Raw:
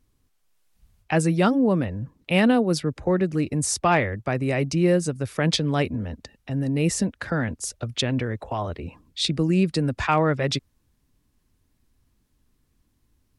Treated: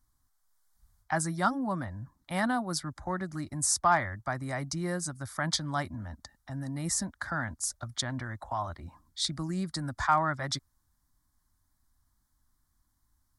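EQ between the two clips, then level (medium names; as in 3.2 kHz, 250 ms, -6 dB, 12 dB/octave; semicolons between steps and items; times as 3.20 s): peaking EQ 180 Hz -6 dB 1.9 oct; bass shelf 350 Hz -5 dB; static phaser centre 1.1 kHz, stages 4; 0.0 dB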